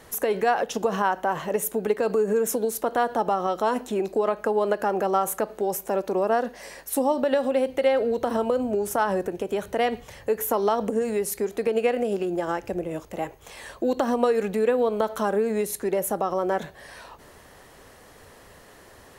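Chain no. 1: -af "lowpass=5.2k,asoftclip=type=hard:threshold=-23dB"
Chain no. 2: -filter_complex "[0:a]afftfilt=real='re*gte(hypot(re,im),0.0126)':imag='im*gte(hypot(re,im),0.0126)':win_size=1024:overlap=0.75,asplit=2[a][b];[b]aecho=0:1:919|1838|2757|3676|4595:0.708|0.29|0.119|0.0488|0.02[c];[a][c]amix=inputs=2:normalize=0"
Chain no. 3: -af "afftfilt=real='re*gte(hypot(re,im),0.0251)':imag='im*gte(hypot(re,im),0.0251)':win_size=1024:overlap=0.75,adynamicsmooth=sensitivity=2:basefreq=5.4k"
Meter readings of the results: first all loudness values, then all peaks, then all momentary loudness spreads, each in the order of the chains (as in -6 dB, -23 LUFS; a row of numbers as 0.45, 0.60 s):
-28.5, -23.5, -25.5 LUFS; -23.0, -6.0, -8.0 dBFS; 6, 6, 6 LU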